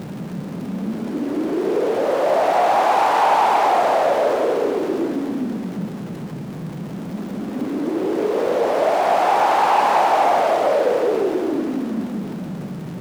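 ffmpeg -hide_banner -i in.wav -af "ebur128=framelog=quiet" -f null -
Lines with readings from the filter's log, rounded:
Integrated loudness:
  I:         -19.3 LUFS
  Threshold: -29.7 LUFS
Loudness range:
  LRA:         8.1 LU
  Threshold: -39.2 LUFS
  LRA low:   -25.4 LUFS
  LRA high:  -17.2 LUFS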